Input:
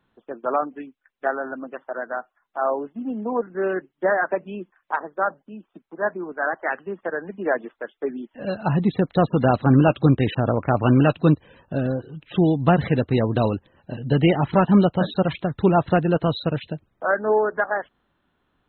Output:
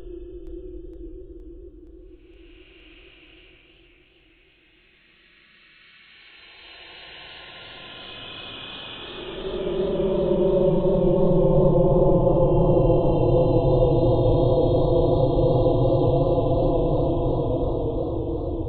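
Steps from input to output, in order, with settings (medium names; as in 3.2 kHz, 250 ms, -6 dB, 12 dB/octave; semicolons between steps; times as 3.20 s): ring modulator 190 Hz; Paulstretch 45×, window 0.05 s, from 12.16 s; modulated delay 467 ms, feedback 71%, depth 111 cents, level -8 dB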